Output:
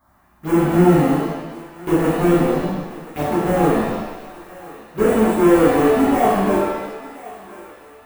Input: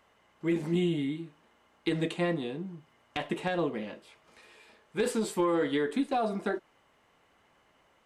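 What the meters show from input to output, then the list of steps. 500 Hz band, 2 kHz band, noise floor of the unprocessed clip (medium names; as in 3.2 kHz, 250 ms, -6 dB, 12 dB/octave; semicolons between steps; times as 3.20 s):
+14.5 dB, +10.5 dB, -67 dBFS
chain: square wave that keeps the level; peaking EQ 5.6 kHz -13 dB 2.1 oct; touch-sensitive phaser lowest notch 450 Hz, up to 4.1 kHz, full sweep at -27 dBFS; on a send: thinning echo 1028 ms, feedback 52%, high-pass 570 Hz, level -16.5 dB; on the sum: pitch-shifted reverb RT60 1 s, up +7 st, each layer -8 dB, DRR -9.5 dB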